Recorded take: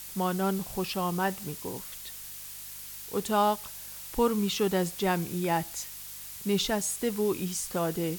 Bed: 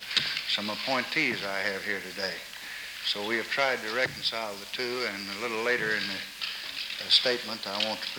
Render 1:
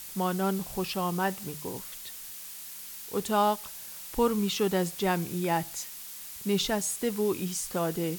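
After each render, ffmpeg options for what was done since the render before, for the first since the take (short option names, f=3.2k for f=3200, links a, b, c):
-af "bandreject=f=50:t=h:w=4,bandreject=f=100:t=h:w=4,bandreject=f=150:t=h:w=4"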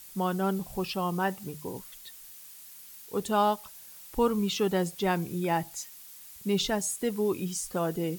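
-af "afftdn=nr=8:nf=-43"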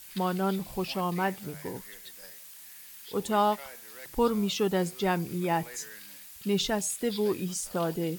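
-filter_complex "[1:a]volume=-20.5dB[a];[0:a][a]amix=inputs=2:normalize=0"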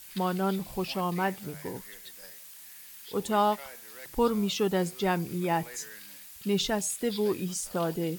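-af anull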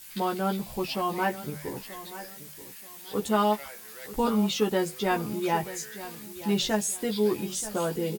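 -filter_complex "[0:a]asplit=2[a][b];[b]adelay=14,volume=-3dB[c];[a][c]amix=inputs=2:normalize=0,aecho=1:1:931|1862|2793:0.188|0.0565|0.017"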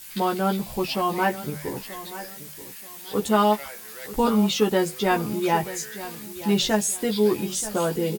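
-af "volume=4.5dB"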